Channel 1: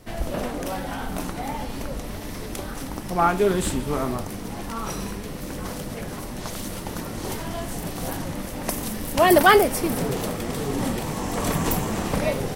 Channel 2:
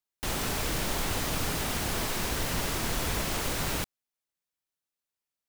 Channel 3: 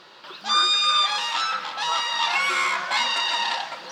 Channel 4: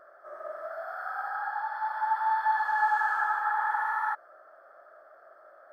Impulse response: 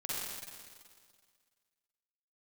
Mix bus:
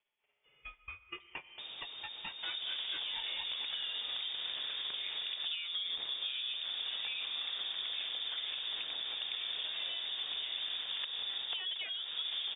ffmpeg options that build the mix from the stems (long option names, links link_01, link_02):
-filter_complex "[0:a]adelay=2350,volume=-1dB[link_01];[1:a]equalizer=frequency=1900:width_type=o:width=1.3:gain=-9,adelay=1350,volume=-3dB[link_02];[2:a]aeval=exprs='val(0)*pow(10,-35*(0.5-0.5*cos(2*PI*4.4*n/s))/20)':channel_layout=same,volume=-9.5dB,asplit=2[link_03][link_04];[link_04]volume=-22dB[link_05];[3:a]acompressor=mode=upward:threshold=-35dB:ratio=2.5,adelay=1200,volume=-15.5dB[link_06];[link_01][link_03]amix=inputs=2:normalize=0,agate=range=-38dB:threshold=-37dB:ratio=16:detection=peak,acompressor=threshold=-29dB:ratio=6,volume=0dB[link_07];[link_02][link_06]amix=inputs=2:normalize=0,acompressor=threshold=-44dB:ratio=4,volume=0dB[link_08];[4:a]atrim=start_sample=2205[link_09];[link_05][link_09]afir=irnorm=-1:irlink=0[link_10];[link_07][link_08][link_10]amix=inputs=3:normalize=0,acrossover=split=110|260[link_11][link_12][link_13];[link_11]acompressor=threshold=-46dB:ratio=4[link_14];[link_12]acompressor=threshold=-41dB:ratio=4[link_15];[link_13]acompressor=threshold=-41dB:ratio=4[link_16];[link_14][link_15][link_16]amix=inputs=3:normalize=0,lowpass=frequency=3100:width_type=q:width=0.5098,lowpass=frequency=3100:width_type=q:width=0.6013,lowpass=frequency=3100:width_type=q:width=0.9,lowpass=frequency=3100:width_type=q:width=2.563,afreqshift=-3700,equalizer=frequency=450:width=1.3:gain=4.5"